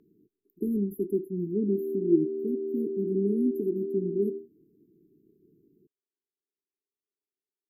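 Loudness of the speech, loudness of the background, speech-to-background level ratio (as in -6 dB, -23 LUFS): -30.0 LUFS, -33.5 LUFS, 3.5 dB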